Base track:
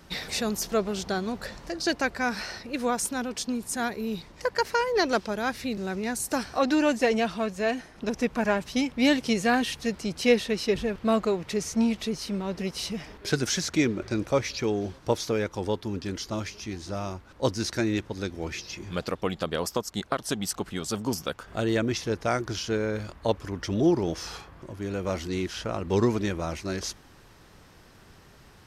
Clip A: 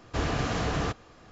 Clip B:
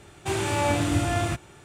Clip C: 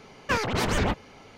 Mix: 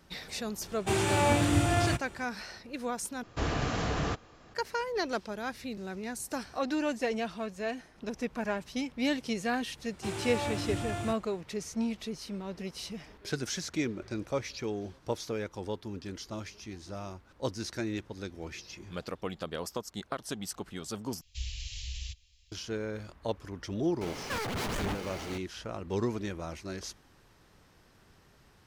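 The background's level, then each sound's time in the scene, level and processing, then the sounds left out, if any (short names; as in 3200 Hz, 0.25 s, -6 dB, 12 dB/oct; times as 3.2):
base track -8 dB
0.61 add B -1.5 dB
3.23 replace with A -2.5 dB
9.77 add B -10.5 dB
21.21 replace with A -3 dB + inverse Chebyshev band-stop 140–1500 Hz
24.01 add C -15.5 dB + power-law curve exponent 0.35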